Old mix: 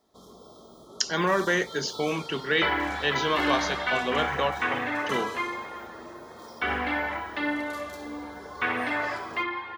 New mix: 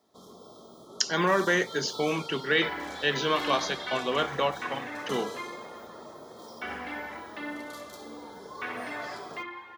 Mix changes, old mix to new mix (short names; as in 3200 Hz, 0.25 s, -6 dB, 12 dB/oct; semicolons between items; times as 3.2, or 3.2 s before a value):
second sound -9.0 dB; master: add HPF 97 Hz 12 dB/oct